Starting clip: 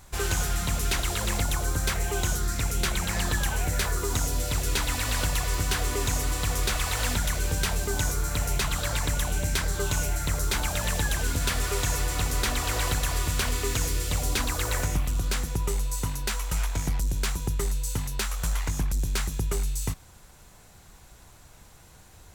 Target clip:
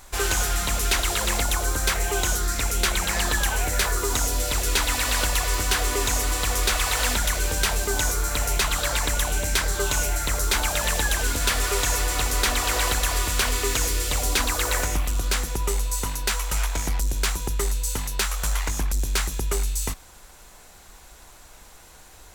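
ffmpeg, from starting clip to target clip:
ffmpeg -i in.wav -af "acontrast=48,equalizer=frequency=120:width=0.84:gain=-13" out.wav

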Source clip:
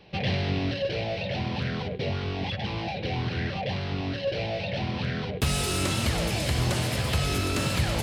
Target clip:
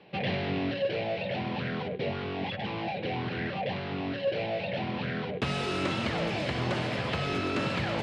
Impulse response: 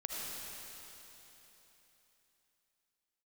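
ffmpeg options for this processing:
-af "highpass=170,lowpass=2900"

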